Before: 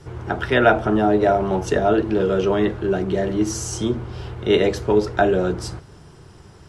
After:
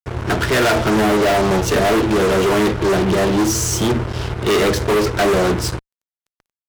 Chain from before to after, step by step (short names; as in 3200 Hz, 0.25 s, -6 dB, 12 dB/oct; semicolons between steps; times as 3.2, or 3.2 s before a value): Butterworth band-stop 780 Hz, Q 7.5; fuzz box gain 31 dB, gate -35 dBFS; upward expander 1.5:1, over -34 dBFS